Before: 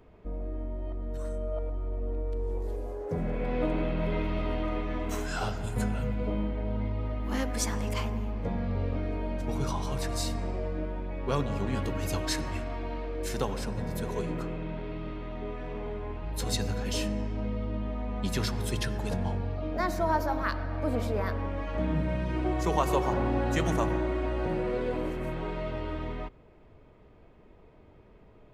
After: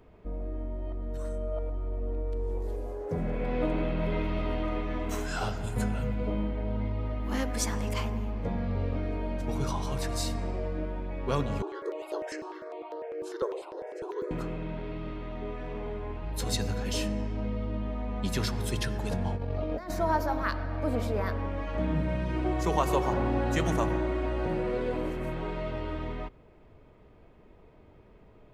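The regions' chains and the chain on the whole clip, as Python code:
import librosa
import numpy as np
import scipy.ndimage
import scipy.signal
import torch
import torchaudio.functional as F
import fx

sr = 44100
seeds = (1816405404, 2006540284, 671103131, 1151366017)

y = fx.chain(x, sr, fx.brickwall_bandpass(low_hz=320.0, high_hz=12000.0),
    fx.tilt_eq(slope=-4.0),
    fx.phaser_held(hz=10.0, low_hz=530.0, high_hz=7900.0), at=(11.62, 14.31))
y = fx.chain(y, sr, fx.over_compress(threshold_db=-33.0, ratio=-0.5),
    fx.peak_eq(hz=510.0, db=6.0, octaves=0.49), at=(19.36, 19.9))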